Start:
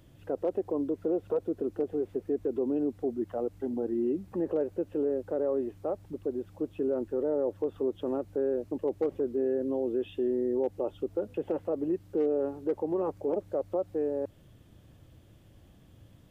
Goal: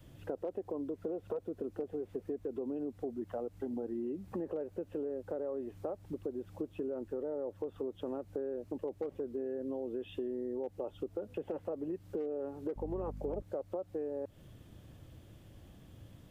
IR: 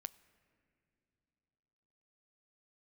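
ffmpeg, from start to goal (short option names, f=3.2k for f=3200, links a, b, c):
-filter_complex "[0:a]adynamicequalizer=threshold=0.00708:dfrequency=340:dqfactor=3.2:tfrequency=340:tqfactor=3.2:attack=5:release=100:ratio=0.375:range=2:mode=cutabove:tftype=bell,acompressor=threshold=-37dB:ratio=5,asettb=1/sr,asplit=3[a][b][c];[a]atrim=end=12.764[d];[b]atrim=start=12.76:end=13.42,asetpts=PTS-STARTPTS,afade=t=in:d=0.004:c=qsin,afade=t=out:st=0.656:d=0.004:c=qsin,aeval=exprs='val(0)+0.00631*(sin(2*PI*50*n/s)+sin(2*PI*2*50*n/s)/2+sin(2*PI*3*50*n/s)/3+sin(2*PI*4*50*n/s)/4+sin(2*PI*5*50*n/s)/5)':c=same[e];[c]atrim=start=13.416[f];[d][e]acrossfade=d=0.004:c1=hsin:c2=qsin[g];[g][f]acrossfade=d=0.004:c1=qsin:c2=hsin,volume=1.5dB"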